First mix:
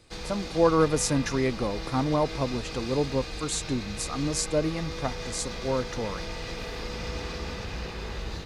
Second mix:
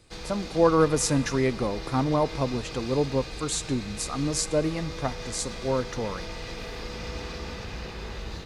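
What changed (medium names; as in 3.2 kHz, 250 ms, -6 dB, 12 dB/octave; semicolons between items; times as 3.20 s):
background -3.0 dB; reverb: on, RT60 2.5 s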